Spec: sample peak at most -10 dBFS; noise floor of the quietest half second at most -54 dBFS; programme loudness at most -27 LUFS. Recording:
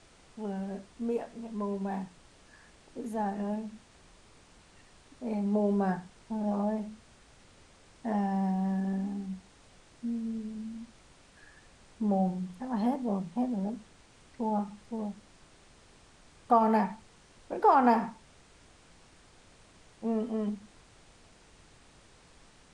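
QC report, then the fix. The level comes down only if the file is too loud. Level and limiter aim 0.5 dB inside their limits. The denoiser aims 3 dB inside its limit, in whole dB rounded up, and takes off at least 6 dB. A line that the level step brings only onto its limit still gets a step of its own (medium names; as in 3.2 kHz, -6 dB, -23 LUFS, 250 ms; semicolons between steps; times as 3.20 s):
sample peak -13.0 dBFS: pass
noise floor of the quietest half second -58 dBFS: pass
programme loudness -31.5 LUFS: pass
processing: none needed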